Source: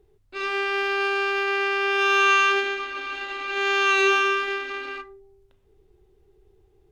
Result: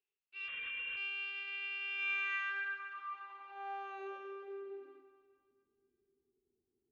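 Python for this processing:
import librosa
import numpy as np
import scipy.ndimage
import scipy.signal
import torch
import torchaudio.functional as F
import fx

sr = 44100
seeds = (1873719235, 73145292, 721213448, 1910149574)

y = fx.filter_sweep_bandpass(x, sr, from_hz=2700.0, to_hz=250.0, start_s=1.91, end_s=5.38, q=7.1)
y = fx.echo_feedback(y, sr, ms=258, feedback_pct=56, wet_db=-16.0)
y = fx.lpc_vocoder(y, sr, seeds[0], excitation='whisper', order=16, at=(0.48, 0.97))
y = y * 10.0 ** (-7.0 / 20.0)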